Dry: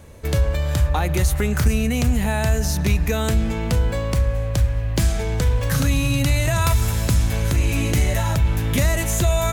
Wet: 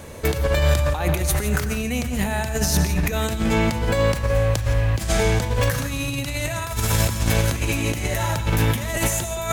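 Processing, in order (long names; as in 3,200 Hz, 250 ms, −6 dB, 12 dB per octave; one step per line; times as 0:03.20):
low-shelf EQ 130 Hz −10 dB
compressor whose output falls as the input rises −27 dBFS, ratio −0.5
reverb whose tail is shaped and stops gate 190 ms rising, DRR 8.5 dB
level +5.5 dB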